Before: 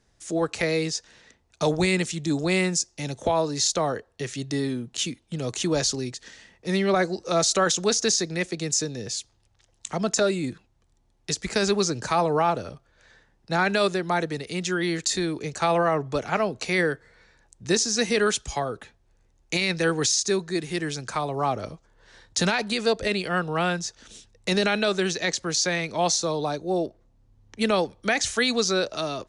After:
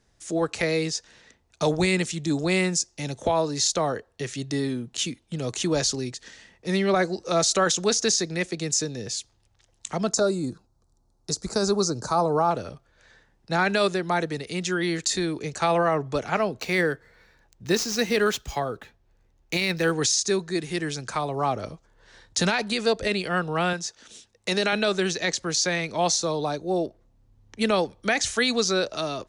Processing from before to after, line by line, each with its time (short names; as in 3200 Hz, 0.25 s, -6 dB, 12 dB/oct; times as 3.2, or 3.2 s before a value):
10.11–12.51 band shelf 2400 Hz -15.5 dB 1.2 oct
16.57–19.92 median filter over 5 samples
23.73–24.73 HPF 260 Hz 6 dB/oct